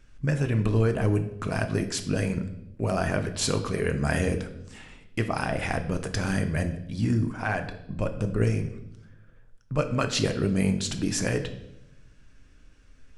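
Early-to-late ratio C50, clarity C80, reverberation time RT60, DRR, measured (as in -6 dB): 11.0 dB, 14.0 dB, 0.80 s, 6.5 dB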